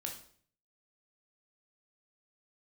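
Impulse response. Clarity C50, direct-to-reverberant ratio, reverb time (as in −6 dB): 7.0 dB, 1.0 dB, 0.50 s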